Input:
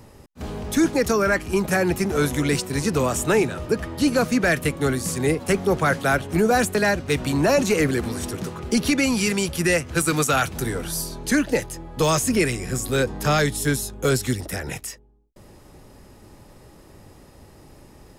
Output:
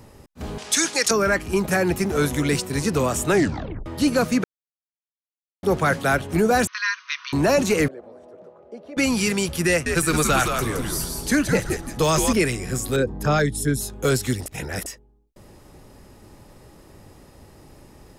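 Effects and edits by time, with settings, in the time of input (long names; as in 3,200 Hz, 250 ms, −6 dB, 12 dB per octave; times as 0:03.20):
0:00.58–0:01.11: meter weighting curve ITU-R 468
0:01.62–0:02.73: floating-point word with a short mantissa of 6 bits
0:03.31: tape stop 0.55 s
0:04.44–0:05.63: silence
0:06.67–0:07.33: linear-phase brick-wall band-pass 960–6,400 Hz
0:07.88–0:08.97: resonant band-pass 590 Hz, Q 6.3
0:09.69–0:12.33: echo with shifted repeats 169 ms, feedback 32%, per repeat −110 Hz, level −5 dB
0:12.96–0:13.81: spectral envelope exaggerated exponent 1.5
0:14.46–0:14.86: reverse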